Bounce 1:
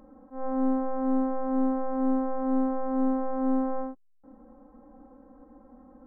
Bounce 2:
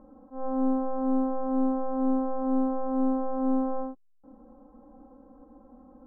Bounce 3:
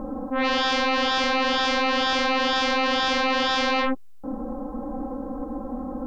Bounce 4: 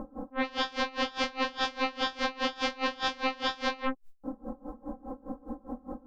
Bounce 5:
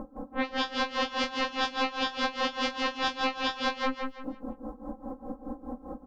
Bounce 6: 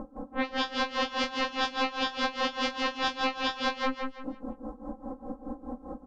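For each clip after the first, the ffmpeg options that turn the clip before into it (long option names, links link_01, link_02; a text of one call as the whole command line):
ffmpeg -i in.wav -af "lowpass=frequency=1400:width=0.5412,lowpass=frequency=1400:width=1.3066" out.wav
ffmpeg -i in.wav -af "aeval=exprs='0.106*sin(PI/2*7.08*val(0)/0.106)':channel_layout=same" out.wav
ffmpeg -i in.wav -af "aeval=exprs='val(0)*pow(10,-24*(0.5-0.5*cos(2*PI*4.9*n/s))/20)':channel_layout=same,volume=-3.5dB" out.wav
ffmpeg -i in.wav -af "aecho=1:1:166|332|498|664:0.596|0.185|0.0572|0.0177" out.wav
ffmpeg -i in.wav -af "aresample=22050,aresample=44100" out.wav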